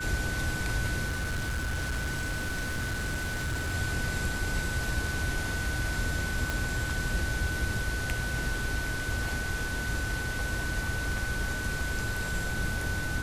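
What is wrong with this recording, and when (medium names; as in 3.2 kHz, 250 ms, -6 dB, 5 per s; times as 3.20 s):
whine 1.5 kHz -34 dBFS
1.08–3.75 s: clipped -27.5 dBFS
6.50 s: pop -16 dBFS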